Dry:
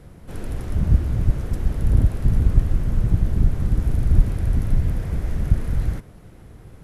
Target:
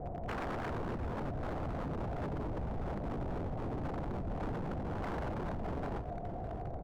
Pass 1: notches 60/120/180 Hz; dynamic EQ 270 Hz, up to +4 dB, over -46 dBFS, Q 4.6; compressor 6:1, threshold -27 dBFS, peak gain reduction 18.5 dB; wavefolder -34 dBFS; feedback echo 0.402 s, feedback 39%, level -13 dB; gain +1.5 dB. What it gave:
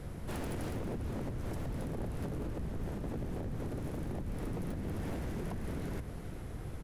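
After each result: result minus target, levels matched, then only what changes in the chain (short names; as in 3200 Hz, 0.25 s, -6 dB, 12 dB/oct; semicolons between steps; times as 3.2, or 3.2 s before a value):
1000 Hz band -7.0 dB; echo 0.208 s early
add after dynamic EQ: synth low-pass 710 Hz, resonance Q 8.6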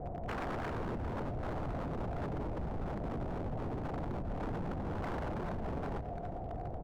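echo 0.208 s early
change: feedback echo 0.61 s, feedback 39%, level -13 dB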